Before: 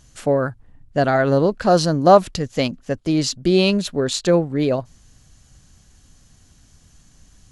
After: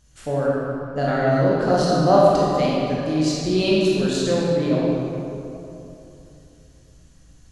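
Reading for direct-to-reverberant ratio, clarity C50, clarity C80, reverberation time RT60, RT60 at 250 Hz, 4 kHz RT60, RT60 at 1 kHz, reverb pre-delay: -6.5 dB, -3.5 dB, -1.5 dB, 2.9 s, 3.2 s, 1.7 s, 2.8 s, 17 ms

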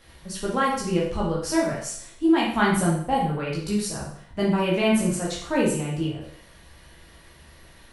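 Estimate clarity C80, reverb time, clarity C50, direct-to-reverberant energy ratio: 7.0 dB, 0.60 s, 3.0 dB, -5.0 dB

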